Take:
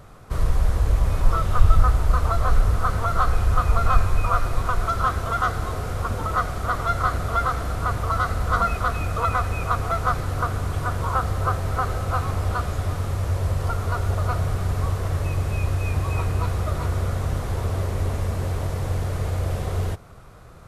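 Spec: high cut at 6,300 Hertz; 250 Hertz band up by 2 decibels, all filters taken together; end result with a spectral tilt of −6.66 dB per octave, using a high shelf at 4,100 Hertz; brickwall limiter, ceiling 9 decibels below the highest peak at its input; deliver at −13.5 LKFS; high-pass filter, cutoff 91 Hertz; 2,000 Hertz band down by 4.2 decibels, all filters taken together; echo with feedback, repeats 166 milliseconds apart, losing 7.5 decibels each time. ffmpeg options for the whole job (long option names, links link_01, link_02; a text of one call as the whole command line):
ffmpeg -i in.wav -af "highpass=91,lowpass=6300,equalizer=frequency=250:width_type=o:gain=3.5,equalizer=frequency=2000:width_type=o:gain=-6,highshelf=frequency=4100:gain=-4,alimiter=limit=-19.5dB:level=0:latency=1,aecho=1:1:166|332|498|664|830:0.422|0.177|0.0744|0.0312|0.0131,volume=15.5dB" out.wav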